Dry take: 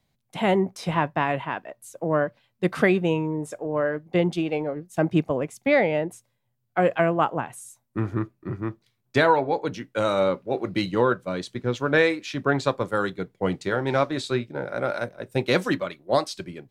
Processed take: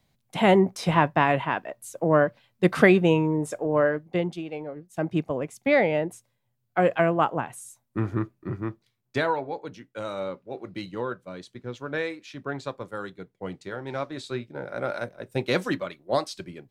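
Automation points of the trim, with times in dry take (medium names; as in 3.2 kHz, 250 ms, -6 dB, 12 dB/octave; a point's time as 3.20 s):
3.84 s +3 dB
4.42 s -9 dB
5.80 s -0.5 dB
8.53 s -0.5 dB
9.70 s -10 dB
13.84 s -10 dB
14.86 s -3 dB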